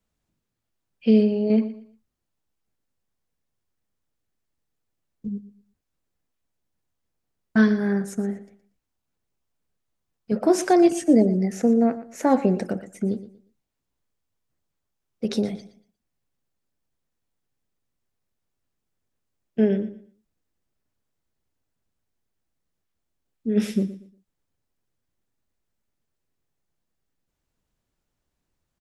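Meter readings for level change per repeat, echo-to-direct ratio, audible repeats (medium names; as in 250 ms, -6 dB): -11.5 dB, -14.5 dB, 2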